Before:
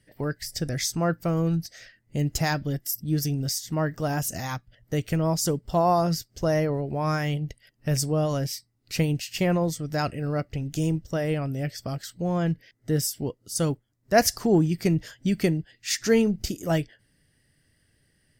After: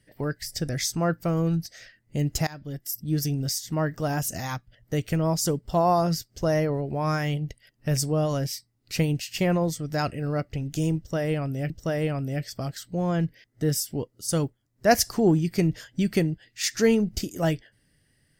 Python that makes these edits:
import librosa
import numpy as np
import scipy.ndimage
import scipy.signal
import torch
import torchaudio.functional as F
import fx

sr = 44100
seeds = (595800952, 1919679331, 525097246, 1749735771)

y = fx.edit(x, sr, fx.fade_in_from(start_s=2.47, length_s=0.86, curve='qsin', floor_db=-22.5),
    fx.repeat(start_s=10.97, length_s=0.73, count=2), tone=tone)